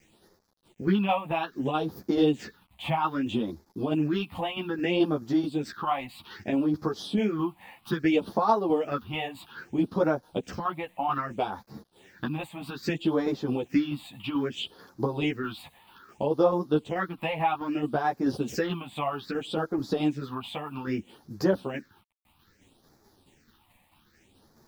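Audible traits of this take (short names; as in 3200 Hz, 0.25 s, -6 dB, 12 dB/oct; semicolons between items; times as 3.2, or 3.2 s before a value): a quantiser's noise floor 10-bit, dither none; phasing stages 6, 0.62 Hz, lowest notch 380–2800 Hz; tremolo saw down 4.6 Hz, depth 45%; a shimmering, thickened sound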